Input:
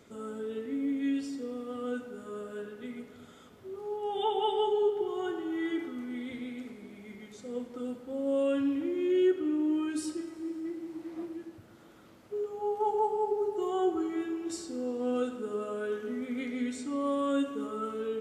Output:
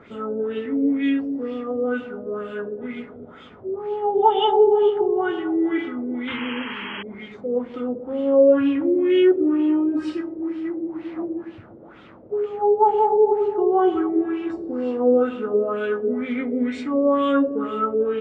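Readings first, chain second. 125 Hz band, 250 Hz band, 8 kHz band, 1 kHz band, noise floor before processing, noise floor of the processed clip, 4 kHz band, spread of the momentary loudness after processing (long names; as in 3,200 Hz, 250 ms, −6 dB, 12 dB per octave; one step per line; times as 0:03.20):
can't be measured, +10.0 dB, below −10 dB, +12.0 dB, −55 dBFS, −44 dBFS, +9.5 dB, 14 LU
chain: auto-filter low-pass sine 2.1 Hz 480–3,100 Hz
sound drawn into the spectrogram noise, 0:06.27–0:07.03, 820–3,300 Hz −42 dBFS
level +9 dB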